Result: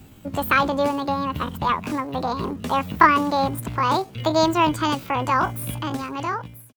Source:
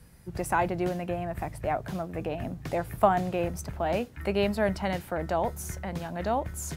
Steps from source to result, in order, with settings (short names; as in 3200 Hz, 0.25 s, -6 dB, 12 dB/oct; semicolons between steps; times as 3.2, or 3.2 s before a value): ending faded out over 0.86 s; pitch shift +8 st; gain +7.5 dB